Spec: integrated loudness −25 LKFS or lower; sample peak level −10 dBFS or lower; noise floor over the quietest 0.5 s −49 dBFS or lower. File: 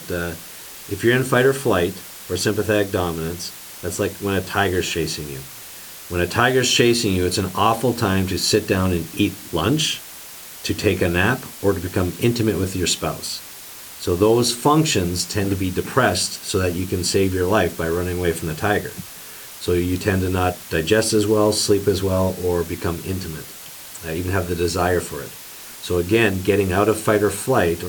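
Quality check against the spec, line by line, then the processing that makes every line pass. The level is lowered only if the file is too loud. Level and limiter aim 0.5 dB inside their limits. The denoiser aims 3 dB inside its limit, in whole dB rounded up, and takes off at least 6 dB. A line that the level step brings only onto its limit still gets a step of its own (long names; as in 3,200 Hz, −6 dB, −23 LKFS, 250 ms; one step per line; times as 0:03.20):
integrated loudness −20.0 LKFS: out of spec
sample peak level −2.5 dBFS: out of spec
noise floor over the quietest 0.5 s −38 dBFS: out of spec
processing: broadband denoise 9 dB, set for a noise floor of −38 dBFS
level −5.5 dB
brickwall limiter −10.5 dBFS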